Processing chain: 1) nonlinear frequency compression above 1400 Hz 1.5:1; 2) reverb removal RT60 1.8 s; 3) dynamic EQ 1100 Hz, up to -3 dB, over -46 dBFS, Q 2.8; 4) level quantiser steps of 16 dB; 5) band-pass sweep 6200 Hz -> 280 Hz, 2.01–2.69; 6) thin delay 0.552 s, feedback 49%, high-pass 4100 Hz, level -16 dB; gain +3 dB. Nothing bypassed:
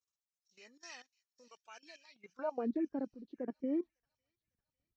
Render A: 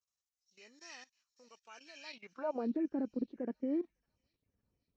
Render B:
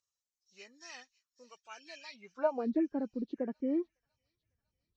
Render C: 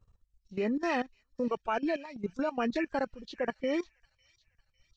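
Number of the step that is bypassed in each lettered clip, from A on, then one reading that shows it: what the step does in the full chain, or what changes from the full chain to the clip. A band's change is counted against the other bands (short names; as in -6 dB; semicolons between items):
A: 2, loudness change +1.0 LU; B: 4, crest factor change +4.0 dB; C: 5, 250 Hz band -7.0 dB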